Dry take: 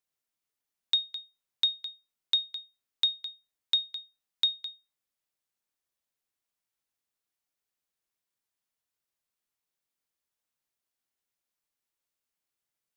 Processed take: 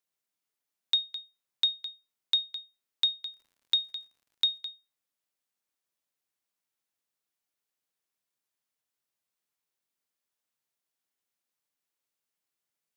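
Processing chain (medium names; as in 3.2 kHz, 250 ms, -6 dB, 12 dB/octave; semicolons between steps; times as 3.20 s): high-pass 110 Hz; 3.31–4.59 s: crackle 100 per s -56 dBFS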